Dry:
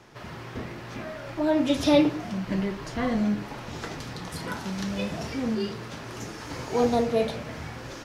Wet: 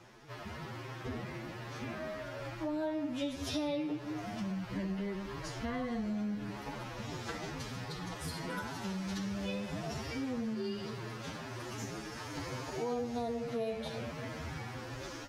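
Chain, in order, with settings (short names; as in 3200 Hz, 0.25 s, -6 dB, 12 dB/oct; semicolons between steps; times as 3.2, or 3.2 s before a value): time stretch by phase-locked vocoder 1.9×; compressor 4:1, threshold -31 dBFS, peak gain reduction 14.5 dB; gain -3.5 dB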